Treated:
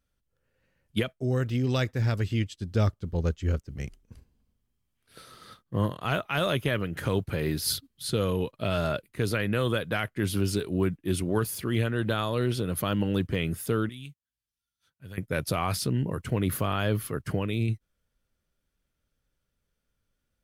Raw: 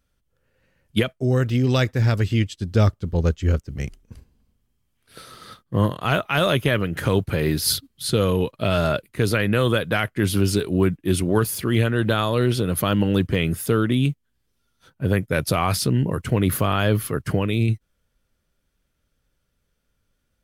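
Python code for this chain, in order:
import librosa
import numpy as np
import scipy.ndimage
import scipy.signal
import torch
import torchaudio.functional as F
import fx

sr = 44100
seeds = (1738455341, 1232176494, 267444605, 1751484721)

y = fx.tone_stack(x, sr, knobs='5-5-5', at=(13.89, 15.18))
y = F.gain(torch.from_numpy(y), -7.0).numpy()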